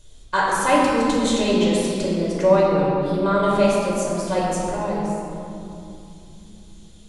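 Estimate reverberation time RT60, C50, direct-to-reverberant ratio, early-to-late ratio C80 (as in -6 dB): 2.8 s, -2.0 dB, -6.0 dB, -0.5 dB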